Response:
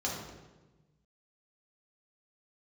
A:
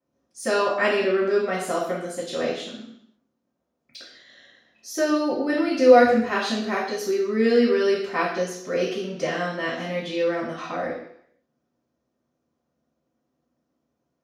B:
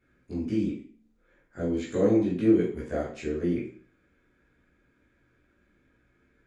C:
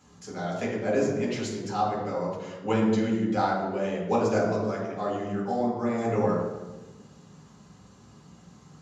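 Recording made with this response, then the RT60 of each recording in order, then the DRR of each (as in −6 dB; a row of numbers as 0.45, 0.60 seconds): C; 0.70, 0.50, 1.2 seconds; −15.5, −7.5, −5.5 decibels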